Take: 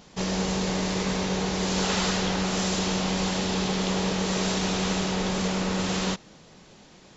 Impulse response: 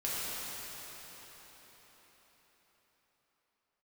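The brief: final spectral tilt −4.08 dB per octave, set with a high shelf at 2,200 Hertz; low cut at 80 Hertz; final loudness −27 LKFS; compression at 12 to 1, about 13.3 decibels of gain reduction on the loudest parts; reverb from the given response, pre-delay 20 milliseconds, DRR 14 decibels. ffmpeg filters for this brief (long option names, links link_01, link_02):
-filter_complex "[0:a]highpass=80,highshelf=frequency=2200:gain=-3,acompressor=threshold=-37dB:ratio=12,asplit=2[link_01][link_02];[1:a]atrim=start_sample=2205,adelay=20[link_03];[link_02][link_03]afir=irnorm=-1:irlink=0,volume=-21dB[link_04];[link_01][link_04]amix=inputs=2:normalize=0,volume=14dB"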